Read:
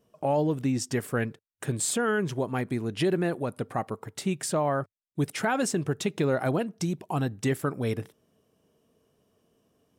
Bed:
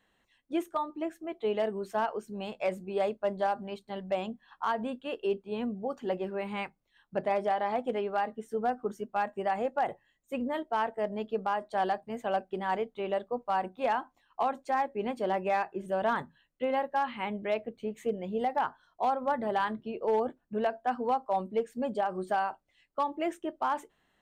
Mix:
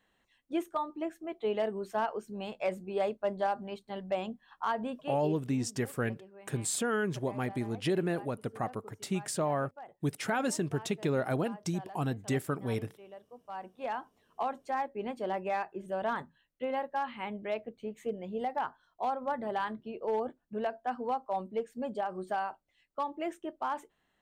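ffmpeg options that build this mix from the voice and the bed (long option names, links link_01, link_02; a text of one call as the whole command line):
ffmpeg -i stem1.wav -i stem2.wav -filter_complex "[0:a]adelay=4850,volume=-4.5dB[link_01];[1:a]volume=13dB,afade=type=out:start_time=4.88:duration=0.57:silence=0.141254,afade=type=in:start_time=13.34:duration=0.87:silence=0.188365[link_02];[link_01][link_02]amix=inputs=2:normalize=0" out.wav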